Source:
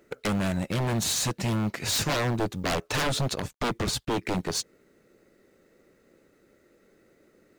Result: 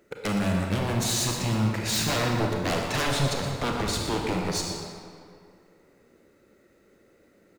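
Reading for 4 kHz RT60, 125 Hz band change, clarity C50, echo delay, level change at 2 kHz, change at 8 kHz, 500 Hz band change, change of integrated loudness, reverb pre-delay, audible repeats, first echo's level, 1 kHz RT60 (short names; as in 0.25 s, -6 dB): 1.5 s, +2.0 dB, 1.0 dB, 0.119 s, +1.5 dB, +0.5 dB, +1.5 dB, +1.5 dB, 29 ms, 1, -9.5 dB, 2.2 s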